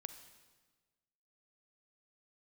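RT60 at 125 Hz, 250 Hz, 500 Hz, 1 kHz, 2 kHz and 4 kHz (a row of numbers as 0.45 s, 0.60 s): 1.6 s, 1.5 s, 1.4 s, 1.3 s, 1.2 s, 1.2 s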